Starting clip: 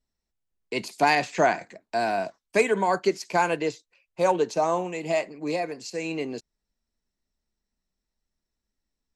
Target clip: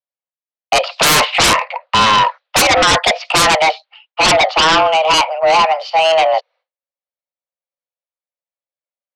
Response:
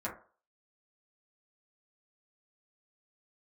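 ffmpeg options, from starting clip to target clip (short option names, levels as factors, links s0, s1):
-af "highpass=f=190:t=q:w=0.5412,highpass=f=190:t=q:w=1.307,lowpass=f=3600:t=q:w=0.5176,lowpass=f=3600:t=q:w=0.7071,lowpass=f=3600:t=q:w=1.932,afreqshift=320,aeval=exprs='0.422*sin(PI/2*7.94*val(0)/0.422)':c=same,agate=range=0.0224:threshold=0.0112:ratio=3:detection=peak"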